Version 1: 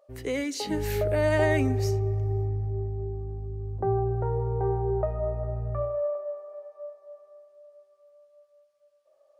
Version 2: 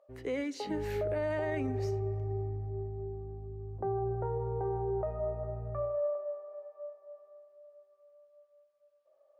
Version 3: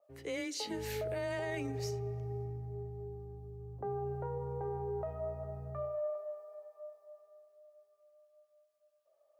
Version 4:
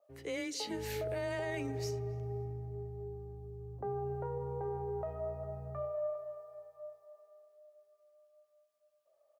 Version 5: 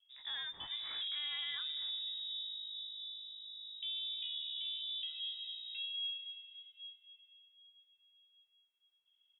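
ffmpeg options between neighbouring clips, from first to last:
ffmpeg -i in.wav -af "lowpass=frequency=1700:poles=1,lowshelf=frequency=170:gain=-8,alimiter=limit=-23dB:level=0:latency=1:release=38,volume=-2.5dB" out.wav
ffmpeg -i in.wav -af "highshelf=frequency=3200:gain=9.5,afreqshift=17,adynamicequalizer=threshold=0.00251:dfrequency=2400:dqfactor=0.7:tfrequency=2400:tqfactor=0.7:attack=5:release=100:ratio=0.375:range=3:mode=boostabove:tftype=highshelf,volume=-5dB" out.wav
ffmpeg -i in.wav -filter_complex "[0:a]asplit=2[link_01][link_02];[link_02]adelay=274,lowpass=frequency=1400:poles=1,volume=-17.5dB,asplit=2[link_03][link_04];[link_04]adelay=274,lowpass=frequency=1400:poles=1,volume=0.48,asplit=2[link_05][link_06];[link_06]adelay=274,lowpass=frequency=1400:poles=1,volume=0.48,asplit=2[link_07][link_08];[link_08]adelay=274,lowpass=frequency=1400:poles=1,volume=0.48[link_09];[link_01][link_03][link_05][link_07][link_09]amix=inputs=5:normalize=0" out.wav
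ffmpeg -i in.wav -af "lowpass=frequency=3300:width_type=q:width=0.5098,lowpass=frequency=3300:width_type=q:width=0.6013,lowpass=frequency=3300:width_type=q:width=0.9,lowpass=frequency=3300:width_type=q:width=2.563,afreqshift=-3900,volume=-3.5dB" out.wav

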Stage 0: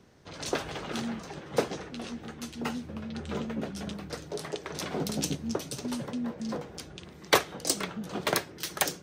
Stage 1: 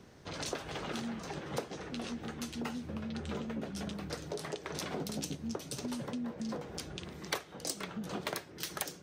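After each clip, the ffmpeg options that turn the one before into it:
ffmpeg -i in.wav -af "acompressor=threshold=-39dB:ratio=4,volume=2.5dB" out.wav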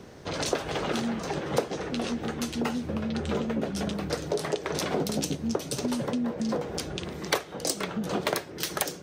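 ffmpeg -i in.wav -af "equalizer=frequency=500:width=0.99:gain=4,volume=8dB" out.wav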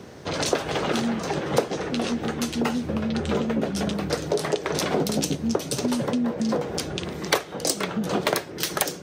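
ffmpeg -i in.wav -af "highpass=67,volume=4.5dB" out.wav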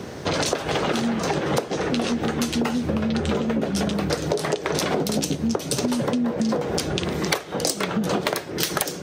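ffmpeg -i in.wav -af "acompressor=threshold=-28dB:ratio=6,volume=8dB" out.wav

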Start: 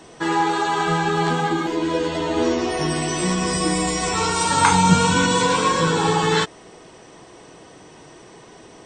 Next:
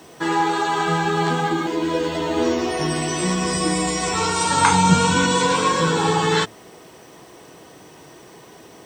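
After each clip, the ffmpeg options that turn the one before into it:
ffmpeg -i in.wav -af "acrusher=bits=8:mix=0:aa=0.000001,highpass=62,bandreject=frequency=111.1:width_type=h:width=4,bandreject=frequency=222.2:width_type=h:width=4" out.wav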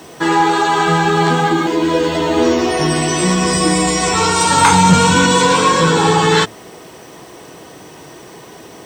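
ffmpeg -i in.wav -af "asoftclip=type=tanh:threshold=-9.5dB,volume=7.5dB" out.wav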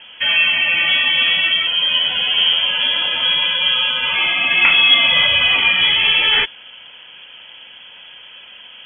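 ffmpeg -i in.wav -af "lowpass=frequency=3000:width_type=q:width=0.5098,lowpass=frequency=3000:width_type=q:width=0.6013,lowpass=frequency=3000:width_type=q:width=0.9,lowpass=frequency=3000:width_type=q:width=2.563,afreqshift=-3500,volume=-2dB" out.wav

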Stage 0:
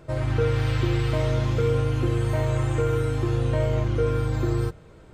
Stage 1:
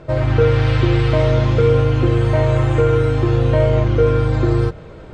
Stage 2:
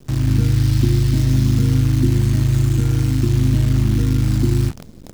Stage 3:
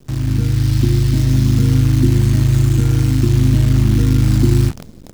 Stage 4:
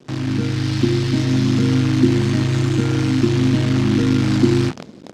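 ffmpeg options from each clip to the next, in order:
ffmpeg -i in.wav -af "lowpass=4800,equalizer=frequency=570:width_type=o:width=0.73:gain=3,areverse,acompressor=mode=upward:threshold=-38dB:ratio=2.5,areverse,volume=8dB" out.wav
ffmpeg -i in.wav -af "firequalizer=gain_entry='entry(120,0);entry(240,10);entry(490,-27);entry(920,-25);entry(1700,-14);entry(2400,-15);entry(5200,7)':delay=0.05:min_phase=1,acrusher=bits=6:dc=4:mix=0:aa=0.000001" out.wav
ffmpeg -i in.wav -af "dynaudnorm=framelen=240:gausssize=5:maxgain=11.5dB,volume=-1dB" out.wav
ffmpeg -i in.wav -af "highpass=220,lowpass=4800,volume=4.5dB" out.wav

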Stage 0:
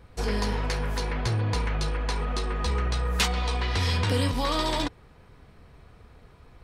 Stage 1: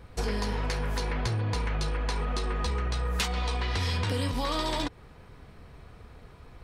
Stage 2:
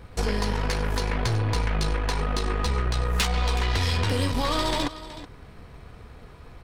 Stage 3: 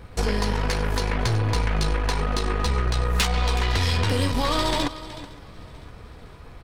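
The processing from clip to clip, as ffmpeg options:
ffmpeg -i in.wav -af "acompressor=threshold=-29dB:ratio=4,volume=2.5dB" out.wav
ffmpeg -i in.wav -af "aecho=1:1:373:0.188,aeval=exprs='0.15*(cos(1*acos(clip(val(0)/0.15,-1,1)))-cos(1*PI/2))+0.00944*(cos(8*acos(clip(val(0)/0.15,-1,1)))-cos(8*PI/2))':channel_layout=same,volume=4dB" out.wav
ffmpeg -i in.wav -af "aecho=1:1:510|1020|1530|2040:0.0668|0.0368|0.0202|0.0111,volume=2dB" out.wav

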